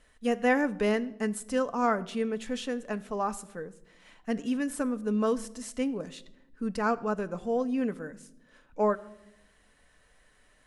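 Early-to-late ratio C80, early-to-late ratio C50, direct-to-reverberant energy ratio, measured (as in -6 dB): 21.0 dB, 19.0 dB, 10.0 dB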